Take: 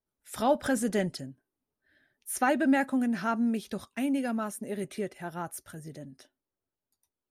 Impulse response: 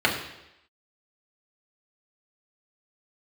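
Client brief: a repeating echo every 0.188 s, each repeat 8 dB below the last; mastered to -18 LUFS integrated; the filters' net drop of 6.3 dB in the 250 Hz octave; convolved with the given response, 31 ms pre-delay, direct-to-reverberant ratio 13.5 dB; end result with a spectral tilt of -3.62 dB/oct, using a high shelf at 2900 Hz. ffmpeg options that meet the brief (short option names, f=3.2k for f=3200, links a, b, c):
-filter_complex "[0:a]equalizer=f=250:t=o:g=-7,highshelf=f=2.9k:g=6.5,aecho=1:1:188|376|564|752|940:0.398|0.159|0.0637|0.0255|0.0102,asplit=2[a][b];[1:a]atrim=start_sample=2205,adelay=31[c];[b][c]afir=irnorm=-1:irlink=0,volume=-30.5dB[d];[a][d]amix=inputs=2:normalize=0,volume=13dB"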